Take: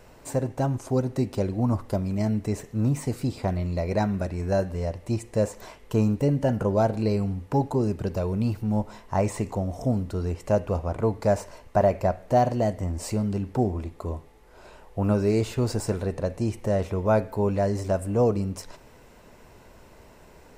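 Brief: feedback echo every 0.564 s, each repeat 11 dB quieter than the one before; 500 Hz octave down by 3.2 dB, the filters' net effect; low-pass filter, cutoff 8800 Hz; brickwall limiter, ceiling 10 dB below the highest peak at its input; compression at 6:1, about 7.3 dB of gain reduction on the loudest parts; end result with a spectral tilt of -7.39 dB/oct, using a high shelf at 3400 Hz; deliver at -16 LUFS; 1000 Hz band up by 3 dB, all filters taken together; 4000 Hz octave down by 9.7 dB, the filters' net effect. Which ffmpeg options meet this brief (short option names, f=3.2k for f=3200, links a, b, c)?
-af "lowpass=8.8k,equalizer=f=500:t=o:g=-7,equalizer=f=1k:t=o:g=9,highshelf=f=3.4k:g=-6.5,equalizer=f=4k:t=o:g=-8,acompressor=threshold=-24dB:ratio=6,alimiter=limit=-24dB:level=0:latency=1,aecho=1:1:564|1128|1692:0.282|0.0789|0.0221,volume=17.5dB"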